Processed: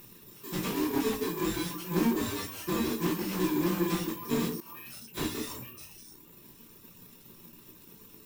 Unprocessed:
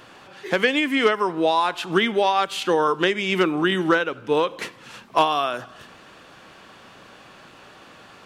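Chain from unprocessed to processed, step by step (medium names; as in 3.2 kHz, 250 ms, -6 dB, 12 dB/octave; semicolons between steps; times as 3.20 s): bit-reversed sample order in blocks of 64 samples; treble shelf 5.6 kHz -10 dB; repeats whose band climbs or falls 152 ms, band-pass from 340 Hz, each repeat 1.4 oct, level -3 dB; reverb removal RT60 1 s; treble shelf 2 kHz -6.5 dB; careless resampling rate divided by 3×, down none, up zero stuff; simulated room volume 220 m³, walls furnished, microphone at 1.2 m; 4.60–5.07 s: compressor with a negative ratio -43 dBFS, ratio -1; slew-rate limiter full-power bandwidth 130 Hz; trim -2.5 dB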